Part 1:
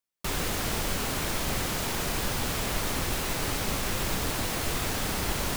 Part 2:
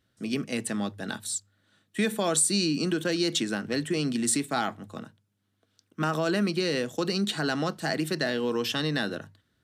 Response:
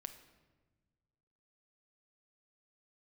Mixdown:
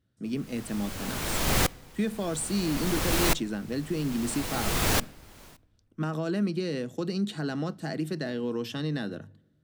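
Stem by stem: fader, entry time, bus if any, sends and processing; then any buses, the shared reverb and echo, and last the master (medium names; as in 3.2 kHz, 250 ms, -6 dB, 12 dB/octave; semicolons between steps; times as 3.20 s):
-1.0 dB, 0.00 s, send -8 dB, level rider gain up to 7 dB; sawtooth tremolo in dB swelling 0.6 Hz, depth 37 dB
-11.0 dB, 0.00 s, send -12.5 dB, bass shelf 450 Hz +11.5 dB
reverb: on, RT60 1.3 s, pre-delay 6 ms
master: none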